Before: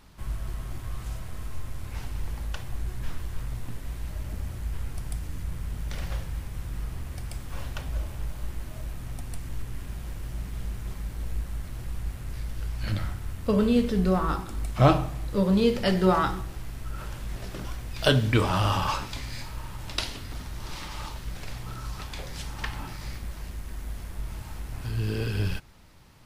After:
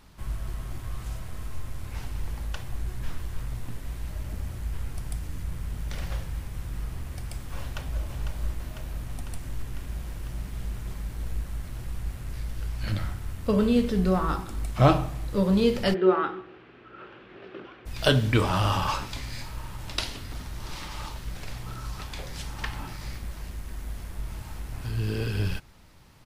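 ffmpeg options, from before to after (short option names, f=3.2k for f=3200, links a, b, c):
-filter_complex "[0:a]asplit=2[a][b];[b]afade=t=in:st=7.59:d=0.01,afade=t=out:st=8.03:d=0.01,aecho=0:1:500|1000|1500|2000|2500|3000|3500|4000|4500|5000|5500|6000:0.473151|0.354863|0.266148|0.199611|0.149708|0.112281|0.0842108|0.0631581|0.0473686|0.0355264|0.0266448|0.0199836[c];[a][c]amix=inputs=2:normalize=0,asplit=3[d][e][f];[d]afade=t=out:st=15.93:d=0.02[g];[e]highpass=340,equalizer=f=370:t=q:w=4:g=8,equalizer=f=650:t=q:w=4:g=-6,equalizer=f=940:t=q:w=4:g=-7,equalizer=f=2k:t=q:w=4:g=-5,lowpass=f=2.8k:w=0.5412,lowpass=f=2.8k:w=1.3066,afade=t=in:st=15.93:d=0.02,afade=t=out:st=17.85:d=0.02[h];[f]afade=t=in:st=17.85:d=0.02[i];[g][h][i]amix=inputs=3:normalize=0"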